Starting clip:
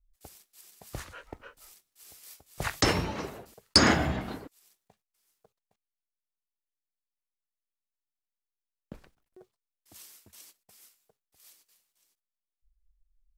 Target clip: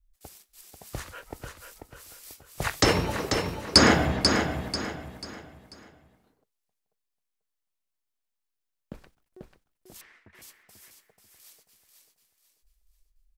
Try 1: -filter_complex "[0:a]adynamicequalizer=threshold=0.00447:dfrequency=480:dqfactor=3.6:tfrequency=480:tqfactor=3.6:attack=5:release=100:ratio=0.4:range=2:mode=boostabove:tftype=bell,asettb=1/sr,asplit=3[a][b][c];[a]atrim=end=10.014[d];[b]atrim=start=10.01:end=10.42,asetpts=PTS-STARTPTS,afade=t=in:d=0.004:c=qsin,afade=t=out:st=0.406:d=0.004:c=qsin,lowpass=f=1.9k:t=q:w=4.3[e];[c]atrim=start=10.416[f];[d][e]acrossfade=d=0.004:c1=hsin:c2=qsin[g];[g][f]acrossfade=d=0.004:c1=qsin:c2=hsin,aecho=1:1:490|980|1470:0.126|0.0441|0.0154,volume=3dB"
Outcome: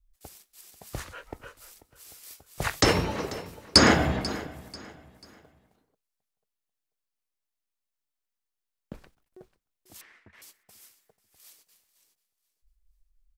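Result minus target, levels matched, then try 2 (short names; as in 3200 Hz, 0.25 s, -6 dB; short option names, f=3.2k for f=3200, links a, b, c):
echo-to-direct -12 dB
-filter_complex "[0:a]adynamicequalizer=threshold=0.00447:dfrequency=480:dqfactor=3.6:tfrequency=480:tqfactor=3.6:attack=5:release=100:ratio=0.4:range=2:mode=boostabove:tftype=bell,asettb=1/sr,asplit=3[a][b][c];[a]atrim=end=10.014[d];[b]atrim=start=10.01:end=10.42,asetpts=PTS-STARTPTS,afade=t=in:d=0.004:c=qsin,afade=t=out:st=0.406:d=0.004:c=qsin,lowpass=f=1.9k:t=q:w=4.3[e];[c]atrim=start=10.416[f];[d][e]acrossfade=d=0.004:c1=hsin:c2=qsin[g];[g][f]acrossfade=d=0.004:c1=qsin:c2=hsin,aecho=1:1:490|980|1470|1960:0.501|0.175|0.0614|0.0215,volume=3dB"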